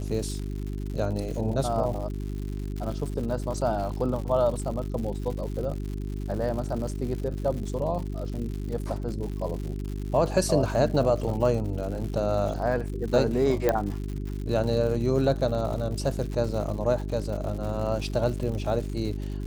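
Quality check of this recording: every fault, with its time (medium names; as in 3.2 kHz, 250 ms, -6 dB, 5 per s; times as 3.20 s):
crackle 150 per s -34 dBFS
hum 50 Hz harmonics 8 -32 dBFS
13.69 s: pop -10 dBFS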